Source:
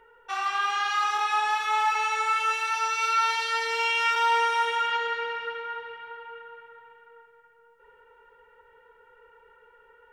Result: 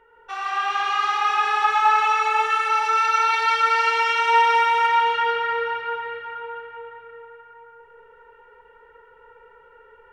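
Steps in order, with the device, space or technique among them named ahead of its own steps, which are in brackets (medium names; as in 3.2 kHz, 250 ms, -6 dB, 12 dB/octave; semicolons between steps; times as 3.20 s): swimming-pool hall (reverberation RT60 3.9 s, pre-delay 94 ms, DRR -5 dB; treble shelf 5.1 kHz -8 dB)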